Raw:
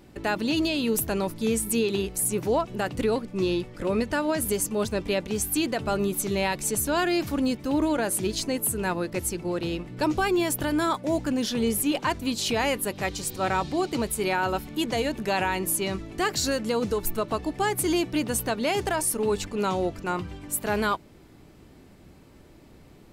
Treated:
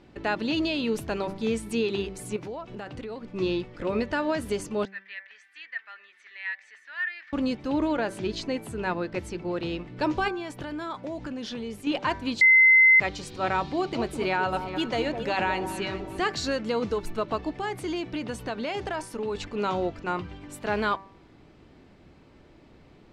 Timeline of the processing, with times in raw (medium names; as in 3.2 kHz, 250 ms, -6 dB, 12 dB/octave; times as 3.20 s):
2.36–3.27 s: compression, threshold -32 dBFS
4.85–7.33 s: ladder band-pass 1.9 kHz, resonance 85%
7.87–9.57 s: treble shelf 7.6 kHz -7.5 dB
10.28–11.87 s: compression, threshold -29 dBFS
12.41–13.00 s: bleep 2.06 kHz -12.5 dBFS
13.65–16.21 s: echo whose repeats swap between lows and highs 206 ms, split 1.1 kHz, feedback 52%, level -7 dB
17.52–19.35 s: compression 3:1, threshold -26 dBFS
whole clip: low-pass 4.2 kHz 12 dB/octave; bass shelf 320 Hz -3.5 dB; de-hum 194 Hz, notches 12